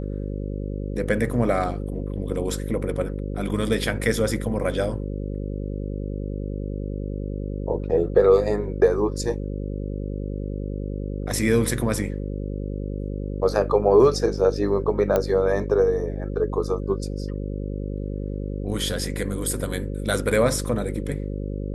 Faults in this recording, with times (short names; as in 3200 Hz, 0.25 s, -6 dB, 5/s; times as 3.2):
buzz 50 Hz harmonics 11 -29 dBFS
15.16 pop -9 dBFS